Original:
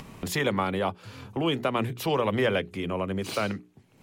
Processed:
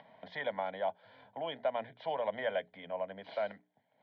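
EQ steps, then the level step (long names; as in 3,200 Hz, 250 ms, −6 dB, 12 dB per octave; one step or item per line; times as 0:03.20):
high-frequency loss of the air 87 metres
loudspeaker in its box 330–3,200 Hz, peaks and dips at 340 Hz +5 dB, 640 Hz +9 dB, 1,000 Hz +3 dB, 3,100 Hz +6 dB
phaser with its sweep stopped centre 1,800 Hz, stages 8
−8.0 dB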